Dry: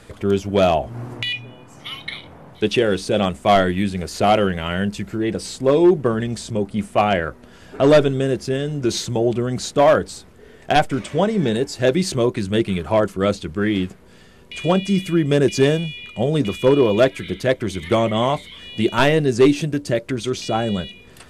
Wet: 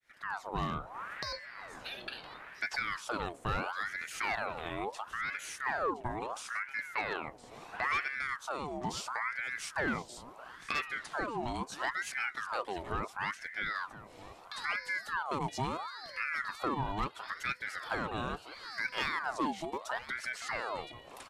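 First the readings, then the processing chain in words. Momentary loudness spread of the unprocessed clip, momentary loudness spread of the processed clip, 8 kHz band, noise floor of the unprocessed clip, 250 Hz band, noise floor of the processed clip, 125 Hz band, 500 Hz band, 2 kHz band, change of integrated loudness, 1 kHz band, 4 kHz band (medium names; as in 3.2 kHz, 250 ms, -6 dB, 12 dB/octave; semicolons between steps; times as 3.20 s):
11 LU, 9 LU, -14.0 dB, -46 dBFS, -23.5 dB, -54 dBFS, -22.5 dB, -24.5 dB, -6.5 dB, -17.0 dB, -12.0 dB, -16.0 dB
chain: fade-in on the opening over 0.62 s; compression 2:1, threshold -34 dBFS, peak gain reduction 13.5 dB; on a send: delay 1015 ms -16 dB; on the sum: ring modulator with a swept carrier 1.2 kHz, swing 60%, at 0.74 Hz; trim -4.5 dB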